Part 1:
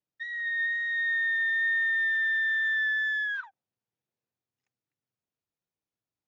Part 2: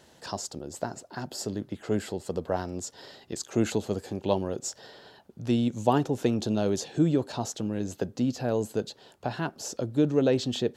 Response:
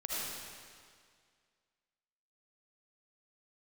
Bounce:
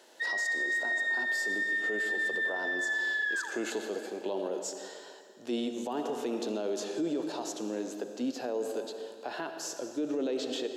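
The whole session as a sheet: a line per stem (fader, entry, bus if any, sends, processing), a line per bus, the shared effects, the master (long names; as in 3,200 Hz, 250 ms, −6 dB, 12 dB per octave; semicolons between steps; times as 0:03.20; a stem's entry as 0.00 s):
+3.0 dB, 0.00 s, send −10 dB, brickwall limiter −30.5 dBFS, peak gain reduction 8 dB
+1.5 dB, 0.00 s, send −10 dB, harmonic and percussive parts rebalanced percussive −8 dB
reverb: on, RT60 2.0 s, pre-delay 35 ms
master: high-pass filter 310 Hz 24 dB per octave; brickwall limiter −24.5 dBFS, peak gain reduction 12.5 dB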